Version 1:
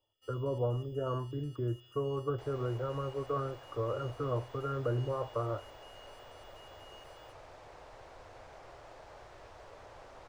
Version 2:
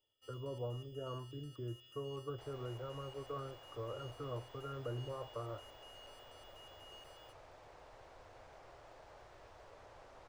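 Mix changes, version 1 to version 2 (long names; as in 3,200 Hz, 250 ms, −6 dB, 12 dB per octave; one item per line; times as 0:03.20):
speech −9.5 dB
second sound −5.5 dB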